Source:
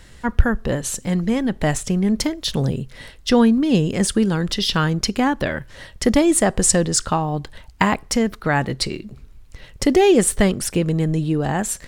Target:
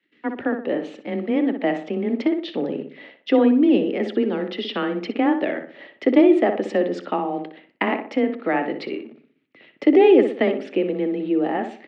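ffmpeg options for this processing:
-filter_complex "[0:a]agate=range=0.126:threshold=0.00794:ratio=16:detection=peak,acrossover=split=370|1200[s0][s1][s2];[s1]acrusher=bits=7:mix=0:aa=0.000001[s3];[s0][s3][s2]amix=inputs=3:normalize=0,highpass=f=250:w=0.5412,highpass=f=250:w=1.3066,equalizer=f=290:t=q:w=4:g=4,equalizer=f=1000:t=q:w=4:g=-10,equalizer=f=1500:t=q:w=4:g=-9,lowpass=f=2700:w=0.5412,lowpass=f=2700:w=1.3066,asplit=2[s4][s5];[s5]adelay=61,lowpass=f=2000:p=1,volume=0.473,asplit=2[s6][s7];[s7]adelay=61,lowpass=f=2000:p=1,volume=0.42,asplit=2[s8][s9];[s9]adelay=61,lowpass=f=2000:p=1,volume=0.42,asplit=2[s10][s11];[s11]adelay=61,lowpass=f=2000:p=1,volume=0.42,asplit=2[s12][s13];[s13]adelay=61,lowpass=f=2000:p=1,volume=0.42[s14];[s4][s6][s8][s10][s12][s14]amix=inputs=6:normalize=0,afreqshift=19"

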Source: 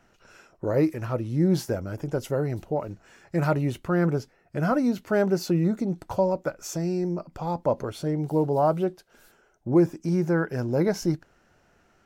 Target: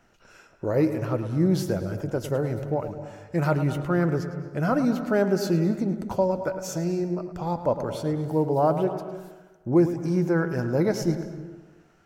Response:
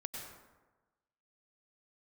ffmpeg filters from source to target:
-filter_complex "[0:a]asplit=2[s0][s1];[1:a]atrim=start_sample=2205,highshelf=f=4800:g=-7.5,adelay=107[s2];[s1][s2]afir=irnorm=-1:irlink=0,volume=0.447[s3];[s0][s3]amix=inputs=2:normalize=0"

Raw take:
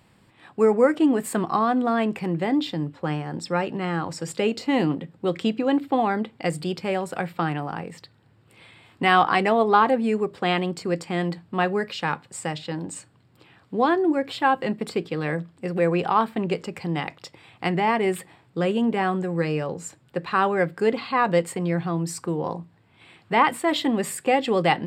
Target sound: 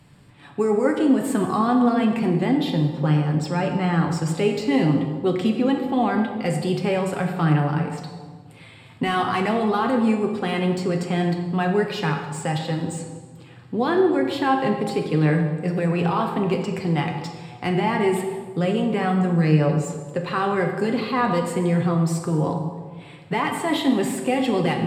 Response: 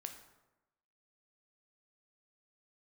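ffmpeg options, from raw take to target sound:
-filter_complex "[0:a]bass=f=250:g=7,treble=f=4000:g=2,acrossover=split=140|3000[s0][s1][s2];[s1]alimiter=limit=0.15:level=0:latency=1[s3];[s2]asoftclip=type=tanh:threshold=0.0168[s4];[s0][s3][s4]amix=inputs=3:normalize=0,flanger=delay=6.8:depth=1.5:regen=40:speed=0.26:shape=sinusoidal[s5];[1:a]atrim=start_sample=2205,asetrate=25578,aresample=44100[s6];[s5][s6]afir=irnorm=-1:irlink=0,volume=2.37"

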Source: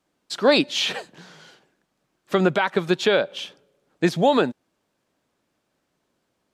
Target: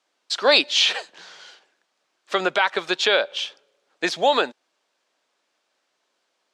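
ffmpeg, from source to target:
-af "highpass=540,lowpass=5400,highshelf=f=3500:g=10,volume=1.19"

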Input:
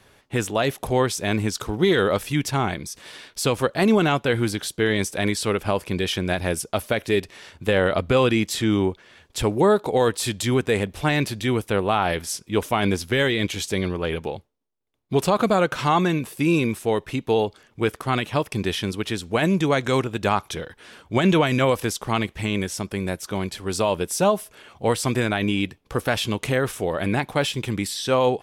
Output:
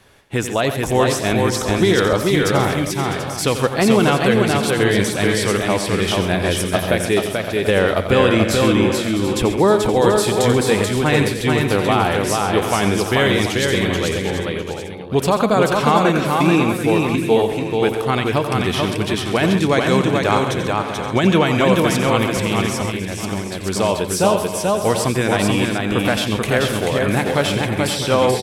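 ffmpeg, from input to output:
-filter_complex "[0:a]asplit=2[s0][s1];[s1]aecho=0:1:435:0.708[s2];[s0][s2]amix=inputs=2:normalize=0,asettb=1/sr,asplit=3[s3][s4][s5];[s3]atrim=end=22.884[s6];[s4]atrim=start=22.88:end=23.65,asetpts=PTS-STARTPTS,afade=t=in:d=0.004:c=qsin,afade=t=out:st=0.766:d=0.004:c=qsin,acompressor=threshold=0.0562:ratio=6[s7];[s5]atrim=start=23.646[s8];[s6][s7]acrossfade=d=0.004:c1=hsin:c2=qsin[s9];[s9][s8]acrossfade=d=0.004:c1=qsin:c2=hsin,asplit=2[s10][s11];[s11]aecho=0:1:89|134|653|736:0.299|0.237|0.237|0.266[s12];[s10][s12]amix=inputs=2:normalize=0,volume=1.41"

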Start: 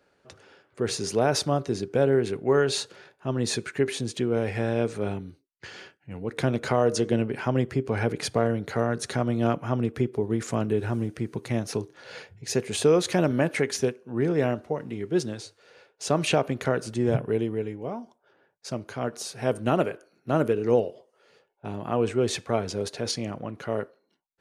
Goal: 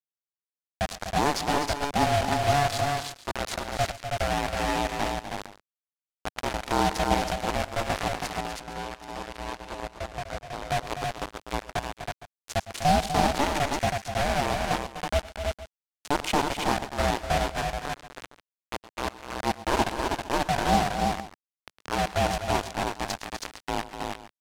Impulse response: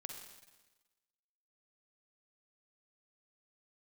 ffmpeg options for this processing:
-filter_complex "[0:a]lowshelf=f=240:t=q:w=1.5:g=-12,acrusher=bits=3:mix=0:aa=0.000001,asettb=1/sr,asplit=3[s0][s1][s2];[s0]atrim=end=8.314[s3];[s1]atrim=start=8.31:end=10.64,asetpts=PTS-STARTPTS,afade=t=in:d=0.004:c=qsin,afade=t=out:st=2.326:d=0.004:c=qsin,asoftclip=type=hard:threshold=0.0631[s4];[s2]atrim=start=10.636[s5];[s3][s4]acrossfade=d=0.004:c1=hsin:c2=qsin[s6];[s6][s5]acrossfade=d=0.004:c1=qsin:c2=hsin,adynamicsmooth=sensitivity=1.5:basefreq=7200,aecho=1:1:108|126|248|322|462:0.126|0.1|0.335|0.631|0.141,aeval=exprs='val(0)*sin(2*PI*290*n/s)':c=same,equalizer=f=140:t=o:w=1:g=-6.5"

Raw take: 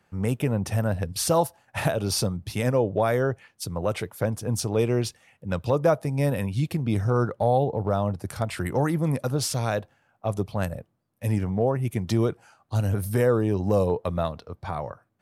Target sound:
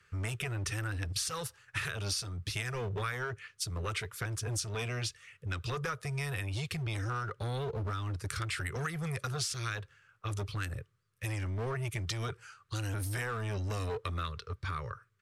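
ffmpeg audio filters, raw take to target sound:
-filter_complex "[0:a]firequalizer=gain_entry='entry(110,0);entry(280,-30);entry(400,-2);entry(700,-27);entry(1200,2);entry(7600,1);entry(13000,-9)':delay=0.05:min_phase=1,acrossover=split=1200[s0][s1];[s0]asoftclip=type=hard:threshold=0.02[s2];[s2][s1]amix=inputs=2:normalize=0,acompressor=threshold=0.0178:ratio=6,volume=1.33"

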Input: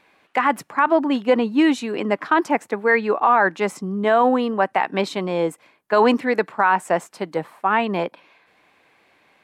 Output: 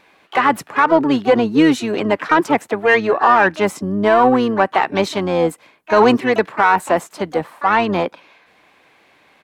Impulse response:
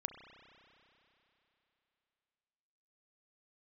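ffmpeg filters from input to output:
-filter_complex "[0:a]asplit=2[s0][s1];[s1]asoftclip=type=tanh:threshold=0.158,volume=0.473[s2];[s0][s2]amix=inputs=2:normalize=0,asplit=3[s3][s4][s5];[s4]asetrate=22050,aresample=44100,atempo=2,volume=0.141[s6];[s5]asetrate=66075,aresample=44100,atempo=0.66742,volume=0.251[s7];[s3][s6][s7]amix=inputs=3:normalize=0,volume=1.19"

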